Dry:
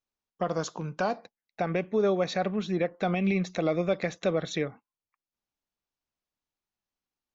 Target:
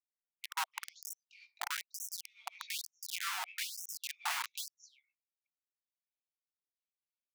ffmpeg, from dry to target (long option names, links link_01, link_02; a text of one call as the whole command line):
ffmpeg -i in.wav -filter_complex "[0:a]asplit=2[link_01][link_02];[link_02]aeval=exprs='0.0531*(abs(mod(val(0)/0.0531+3,4)-2)-1)':channel_layout=same,volume=-8.5dB[link_03];[link_01][link_03]amix=inputs=2:normalize=0,asplit=3[link_04][link_05][link_06];[link_04]bandpass=frequency=300:width_type=q:width=8,volume=0dB[link_07];[link_05]bandpass=frequency=870:width_type=q:width=8,volume=-6dB[link_08];[link_06]bandpass=frequency=2240:width_type=q:width=8,volume=-9dB[link_09];[link_07][link_08][link_09]amix=inputs=3:normalize=0,asplit=3[link_10][link_11][link_12];[link_10]afade=type=out:start_time=2.85:duration=0.02[link_13];[link_11]tiltshelf=frequency=690:gain=6.5,afade=type=in:start_time=2.85:duration=0.02,afade=type=out:start_time=4.44:duration=0.02[link_14];[link_12]afade=type=in:start_time=4.44:duration=0.02[link_15];[link_13][link_14][link_15]amix=inputs=3:normalize=0,acrossover=split=1300[link_16][link_17];[link_17]adelay=320[link_18];[link_16][link_18]amix=inputs=2:normalize=0,acrossover=split=490[link_19][link_20];[link_19]aeval=exprs='val(0)*(1-0.5/2+0.5/2*cos(2*PI*3*n/s))':channel_layout=same[link_21];[link_20]aeval=exprs='val(0)*(1-0.5/2-0.5/2*cos(2*PI*3*n/s))':channel_layout=same[link_22];[link_21][link_22]amix=inputs=2:normalize=0,flanger=delay=15.5:depth=5.6:speed=0.41,acrossover=split=2600[link_23][link_24];[link_23]acrusher=bits=6:mix=0:aa=0.000001[link_25];[link_25][link_24]amix=inputs=2:normalize=0,acompressor=threshold=-38dB:ratio=6,afftfilt=real='re*gte(b*sr/1024,670*pow(5600/670,0.5+0.5*sin(2*PI*1.1*pts/sr)))':imag='im*gte(b*sr/1024,670*pow(5600/670,0.5+0.5*sin(2*PI*1.1*pts/sr)))':win_size=1024:overlap=0.75,volume=15dB" out.wav